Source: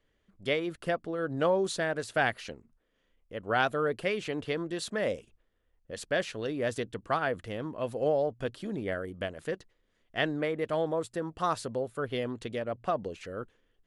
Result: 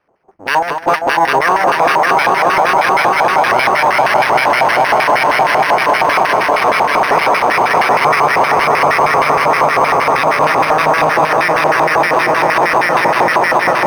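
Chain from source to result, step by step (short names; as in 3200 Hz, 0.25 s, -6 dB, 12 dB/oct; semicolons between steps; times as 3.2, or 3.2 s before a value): Wiener smoothing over 25 samples; bell 100 Hz +7.5 dB 1.5 oct; full-wave rectifier; on a send: swelling echo 0.199 s, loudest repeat 5, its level -3 dB; on the sum: LFO band-pass square 6.4 Hz 820–1900 Hz; maximiser +32.5 dB; decimation joined by straight lines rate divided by 6×; gain -1 dB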